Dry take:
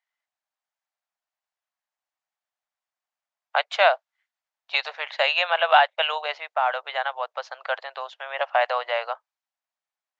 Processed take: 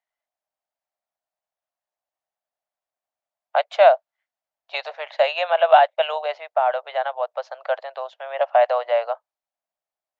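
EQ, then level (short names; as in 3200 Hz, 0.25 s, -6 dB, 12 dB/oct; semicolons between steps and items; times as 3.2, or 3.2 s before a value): low shelf 350 Hz +5.5 dB; bell 620 Hz +12.5 dB 0.87 oct; -5.5 dB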